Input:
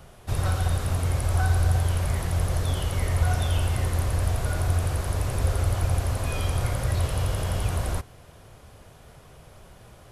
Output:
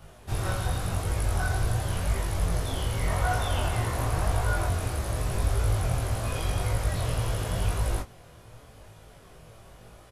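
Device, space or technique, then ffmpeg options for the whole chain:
double-tracked vocal: -filter_complex "[0:a]asplit=2[s0][s1];[s1]adelay=18,volume=0.794[s2];[s0][s2]amix=inputs=2:normalize=0,flanger=delay=20:depth=6.9:speed=0.89,asettb=1/sr,asplit=3[s3][s4][s5];[s3]atrim=end=3.074[s6];[s4]atrim=start=3.07:end=4.69,asetpts=PTS-STARTPTS,afade=t=in:d=0.004:c=qsin,afade=t=out:st=1.616:d=0.004:c=qsin,equalizer=f=960:w=0.84:g=5.5[s7];[s5]atrim=start=4.686[s8];[s6][s7]acrossfade=d=0.004:c1=hsin:c2=qsin[s9];[s9][s8]acrossfade=d=0.004:c1=qsin:c2=hsin"

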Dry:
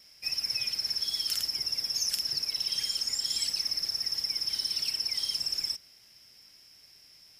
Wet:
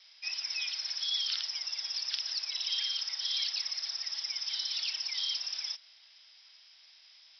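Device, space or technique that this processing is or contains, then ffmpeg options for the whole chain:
musical greeting card: -af "aresample=11025,aresample=44100,highpass=f=750:w=0.5412,highpass=f=750:w=1.3066,equalizer=f=3600:t=o:w=0.5:g=10"

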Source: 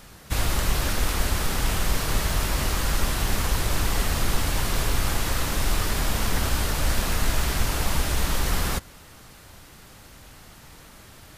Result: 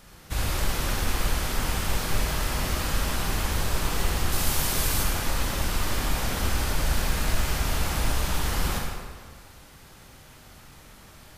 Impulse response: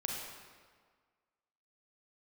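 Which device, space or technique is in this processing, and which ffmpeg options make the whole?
stairwell: -filter_complex "[0:a]asettb=1/sr,asplit=3[s0][s1][s2];[s0]atrim=end=4.324[s3];[s1]atrim=start=4.32:end=5.03,asetpts=PTS-STARTPTS,afade=t=in:d=0.004:c=qsin,afade=t=out:st=0.706:d=0.004:c=qsin,aemphasis=mode=production:type=cd[s4];[s2]atrim=start=5.026[s5];[s3][s4]acrossfade=d=0.004:c1=hsin:c2=qsin[s6];[s6][s5]acrossfade=d=0.004:c1=qsin:c2=hsin[s7];[1:a]atrim=start_sample=2205[s8];[s7][s8]afir=irnorm=-1:irlink=0,volume=0.631"

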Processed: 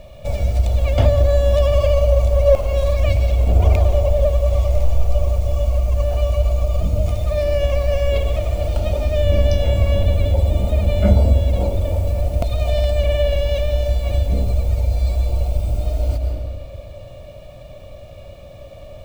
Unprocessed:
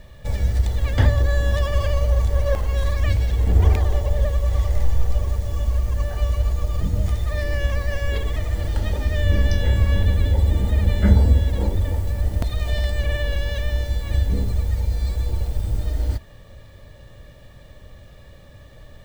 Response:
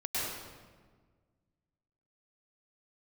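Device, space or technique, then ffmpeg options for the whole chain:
ducked reverb: -filter_complex "[0:a]asplit=3[s0][s1][s2];[1:a]atrim=start_sample=2205[s3];[s1][s3]afir=irnorm=-1:irlink=0[s4];[s2]apad=whole_len=839745[s5];[s4][s5]sidechaincompress=threshold=0.0398:ratio=4:attack=16:release=168,volume=0.398[s6];[s0][s6]amix=inputs=2:normalize=0,superequalizer=8b=3.55:11b=0.316:12b=1.58"

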